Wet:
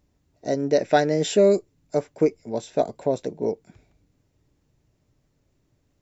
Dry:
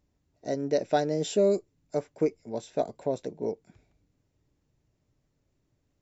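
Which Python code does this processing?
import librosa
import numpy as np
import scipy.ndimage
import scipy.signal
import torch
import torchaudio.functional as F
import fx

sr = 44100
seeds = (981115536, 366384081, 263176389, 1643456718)

y = fx.peak_eq(x, sr, hz=1900.0, db=7.0, octaves=0.84, at=(0.77, 1.53))
y = y * librosa.db_to_amplitude(6.0)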